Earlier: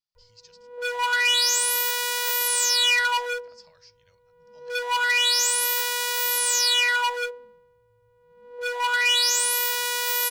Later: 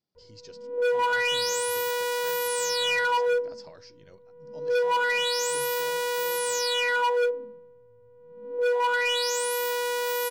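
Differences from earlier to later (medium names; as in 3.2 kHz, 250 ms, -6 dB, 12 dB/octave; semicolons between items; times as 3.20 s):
background -9.5 dB; master: remove amplifier tone stack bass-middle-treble 10-0-10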